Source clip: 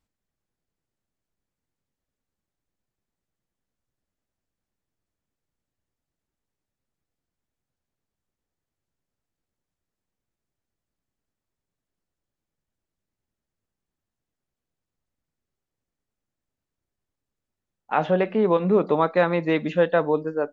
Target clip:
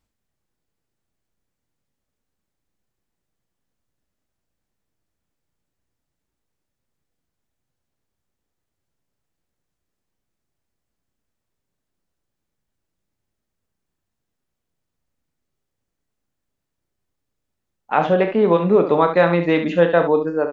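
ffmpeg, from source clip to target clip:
-af "aecho=1:1:34.99|69.97:0.316|0.355,volume=4dB"

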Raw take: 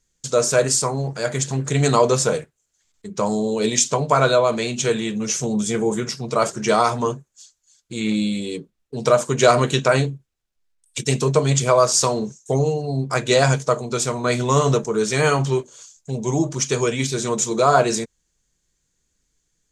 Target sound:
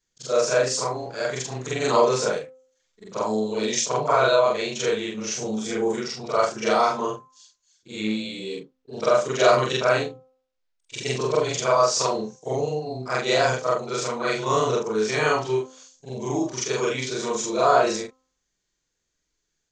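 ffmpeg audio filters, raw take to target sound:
-af "afftfilt=real='re':imag='-im':win_size=4096:overlap=0.75,lowpass=f=6.3k:w=0.5412,lowpass=f=6.3k:w=1.3066,bass=f=250:g=-9,treble=f=4k:g=-1,bandreject=f=259.3:t=h:w=4,bandreject=f=518.6:t=h:w=4,bandreject=f=777.9:t=h:w=4,bandreject=f=1.0372k:t=h:w=4,bandreject=f=1.2965k:t=h:w=4,volume=2.5dB"

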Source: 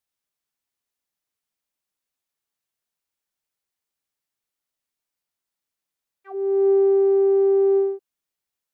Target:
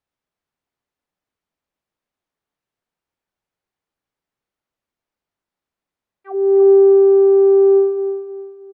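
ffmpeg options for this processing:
-af "lowpass=f=1.1k:p=1,aecho=1:1:313|626|939|1252:0.355|0.121|0.041|0.0139,volume=8.5dB"

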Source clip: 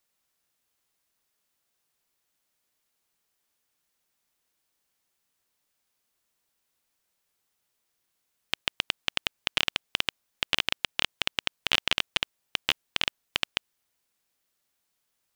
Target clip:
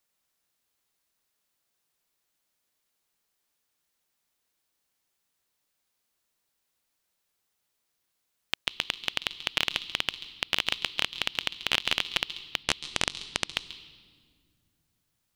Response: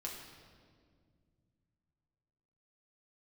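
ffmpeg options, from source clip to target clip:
-filter_complex "[0:a]asettb=1/sr,asplit=3[a][b][c];[a]atrim=end=12.634[d];[b]atrim=start=12.63:end=13.54,asetpts=PTS-STARTPTS,afade=t=in:d=0.004:c=qsin,afade=t=out:st=0.906:d=0.004:c=qsin,aeval=exprs='0.631*(cos(1*acos(clip(val(0)/0.631,-1,1)))-cos(1*PI/2))+0.1*(cos(2*acos(clip(val(0)/0.631,-1,1)))-cos(2*PI/2))+0.141*(cos(3*acos(clip(val(0)/0.631,-1,1)))-cos(3*PI/2))':c=same[e];[c]atrim=start=13.536[f];[d][e]acrossfade=d=0.004:c1=hsin:c2=qsin[g];[g][f]acrossfade=d=0.004:c1=qsin:c2=hsin,asplit=2[h][i];[i]equalizer=f=630:t=o:w=0.67:g=-12,equalizer=f=1.6k:t=o:w=0.67:g=-8,equalizer=f=4k:t=o:w=0.67:g=11[j];[1:a]atrim=start_sample=2205,adelay=136[k];[j][k]afir=irnorm=-1:irlink=0,volume=-13dB[l];[h][l]amix=inputs=2:normalize=0,volume=-1dB"

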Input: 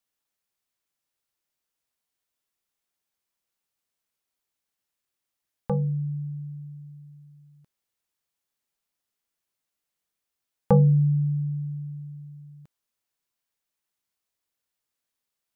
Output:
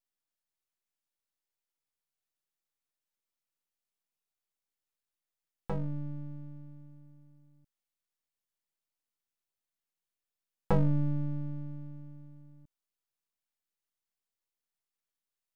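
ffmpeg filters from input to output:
-af "aeval=exprs='max(val(0),0)':c=same,volume=-4.5dB"

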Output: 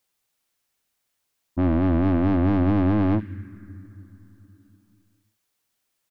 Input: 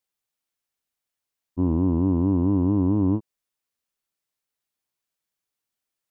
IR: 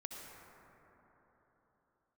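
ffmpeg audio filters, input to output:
-filter_complex "[0:a]asoftclip=type=tanh:threshold=-27dB,asplit=2[a][b];[b]firequalizer=gain_entry='entry(140,0);entry(690,-26);entry(1600,3)':delay=0.05:min_phase=1[c];[1:a]atrim=start_sample=2205,adelay=65[d];[c][d]afir=irnorm=-1:irlink=0,volume=-9dB[e];[a][e]amix=inputs=2:normalize=0,volume=9dB"

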